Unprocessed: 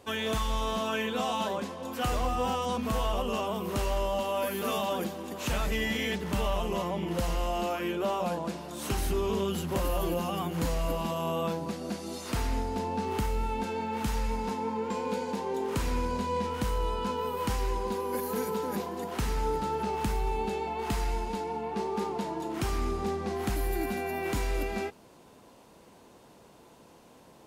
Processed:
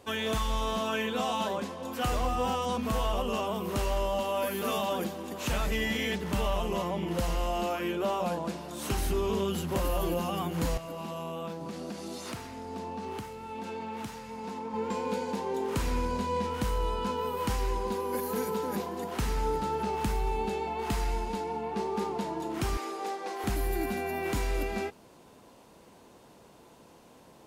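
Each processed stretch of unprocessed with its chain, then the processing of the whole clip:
10.77–14.74 s: compression 4:1, threshold -34 dBFS + high-pass 89 Hz 24 dB/octave + loudspeaker Doppler distortion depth 0.11 ms
22.77–23.44 s: high-pass 350 Hz 24 dB/octave + comb 6.5 ms, depth 53%
whole clip: none

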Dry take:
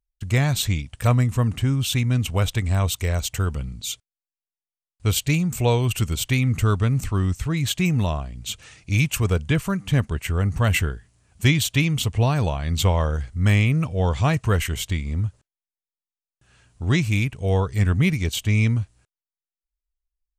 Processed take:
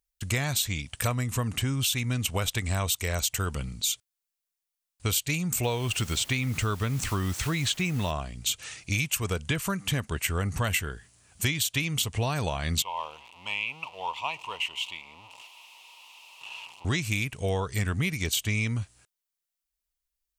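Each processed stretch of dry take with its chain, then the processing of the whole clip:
5.62–8.10 s: distance through air 61 m + added noise pink -49 dBFS + tape noise reduction on one side only encoder only
12.82–16.85 s: jump at every zero crossing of -29.5 dBFS + two resonant band-passes 1.6 kHz, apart 1.5 oct
whole clip: tilt EQ +2 dB/octave; compression, threshold -27 dBFS; trim +2.5 dB

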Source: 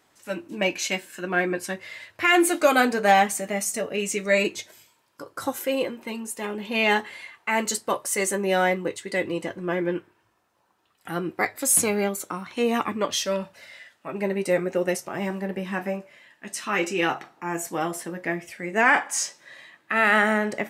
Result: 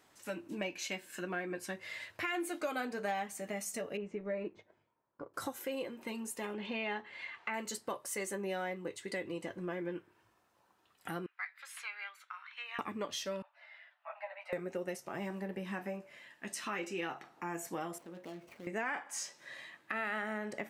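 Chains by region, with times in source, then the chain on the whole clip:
3.97–5.34 s: companding laws mixed up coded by A + low-pass 1.1 kHz
6.54–7.54 s: low-pass 3.6 kHz + tape noise reduction on one side only encoder only
11.26–12.79 s: high-pass 1.4 kHz 24 dB/octave + distance through air 380 m
13.42–14.53 s: steep high-pass 600 Hz 96 dB/octave + distance through air 400 m + three-phase chorus
17.98–18.67 s: median filter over 25 samples + high-pass 180 Hz 6 dB/octave + compression 2:1, threshold -48 dBFS
whole clip: dynamic bell 8.7 kHz, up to -4 dB, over -38 dBFS, Q 0.72; compression 3:1, threshold -36 dBFS; trim -3 dB

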